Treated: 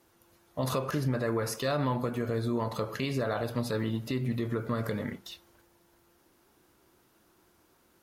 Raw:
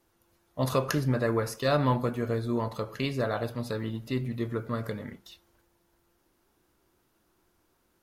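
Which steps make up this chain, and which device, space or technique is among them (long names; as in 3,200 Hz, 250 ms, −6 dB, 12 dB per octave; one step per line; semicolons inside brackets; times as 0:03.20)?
podcast mastering chain (high-pass filter 78 Hz 6 dB per octave; de-essing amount 60%; downward compressor 4 to 1, threshold −30 dBFS, peak gain reduction 8.5 dB; brickwall limiter −26 dBFS, peak gain reduction 8 dB; level +6 dB; MP3 112 kbit/s 48,000 Hz)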